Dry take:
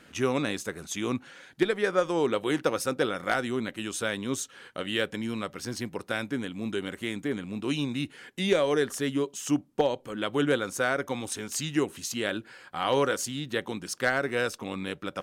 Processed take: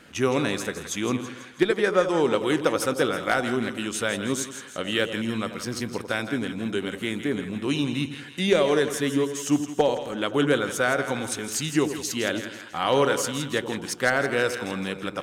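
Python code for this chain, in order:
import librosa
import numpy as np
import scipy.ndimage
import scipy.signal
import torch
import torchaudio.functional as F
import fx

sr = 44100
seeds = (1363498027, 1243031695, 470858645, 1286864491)

y = fx.echo_split(x, sr, split_hz=950.0, low_ms=88, high_ms=164, feedback_pct=52, wet_db=-9.5)
y = y * librosa.db_to_amplitude(3.5)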